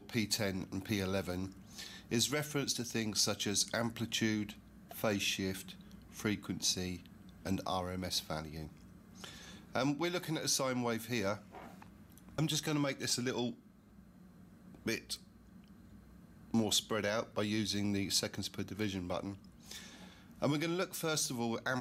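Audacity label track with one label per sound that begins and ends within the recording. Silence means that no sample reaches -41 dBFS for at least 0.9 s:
14.860000	15.160000	sound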